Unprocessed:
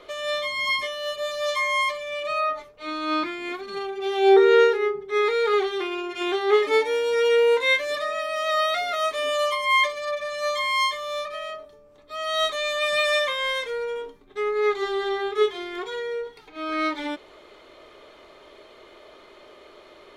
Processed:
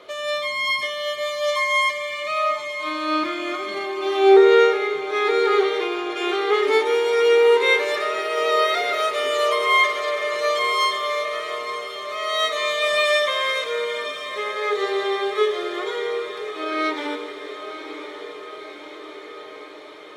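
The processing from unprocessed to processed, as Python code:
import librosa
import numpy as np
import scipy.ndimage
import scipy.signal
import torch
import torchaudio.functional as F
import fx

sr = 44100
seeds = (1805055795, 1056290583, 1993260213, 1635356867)

p1 = scipy.signal.sosfilt(scipy.signal.butter(2, 120.0, 'highpass', fs=sr, output='sos'), x)
p2 = fx.hum_notches(p1, sr, base_hz=60, count=7)
p3 = p2 + fx.echo_diffused(p2, sr, ms=1042, feedback_pct=68, wet_db=-11.5, dry=0)
p4 = fx.rev_schroeder(p3, sr, rt60_s=3.0, comb_ms=33, drr_db=9.0)
y = p4 * librosa.db_to_amplitude(2.0)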